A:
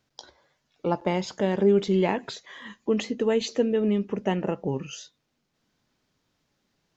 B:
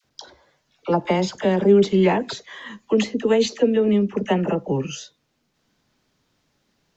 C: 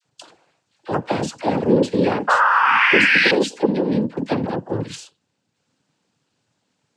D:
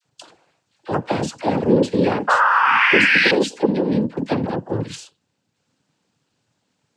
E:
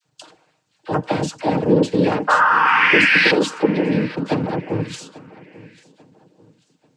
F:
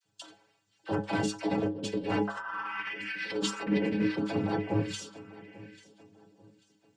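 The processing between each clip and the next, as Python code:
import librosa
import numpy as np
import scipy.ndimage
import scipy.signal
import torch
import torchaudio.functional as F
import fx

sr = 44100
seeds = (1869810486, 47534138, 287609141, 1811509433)

y1 = fx.dispersion(x, sr, late='lows', ms=46.0, hz=860.0)
y1 = y1 * librosa.db_to_amplitude(5.5)
y2 = fx.spec_paint(y1, sr, seeds[0], shape='rise', start_s=2.27, length_s=1.04, low_hz=910.0, high_hz=2600.0, level_db=-14.0)
y2 = fx.noise_vocoder(y2, sr, seeds[1], bands=8)
y2 = y2 * librosa.db_to_amplitude(-1.0)
y3 = fx.low_shelf(y2, sr, hz=83.0, db=5.0)
y4 = y3 + 0.4 * np.pad(y3, (int(6.5 * sr / 1000.0), 0))[:len(y3)]
y4 = fx.echo_feedback(y4, sr, ms=841, feedback_pct=34, wet_db=-20.5)
y5 = fx.over_compress(y4, sr, threshold_db=-20.0, ratio=-0.5)
y5 = fx.stiff_resonator(y5, sr, f0_hz=100.0, decay_s=0.3, stiffness=0.008)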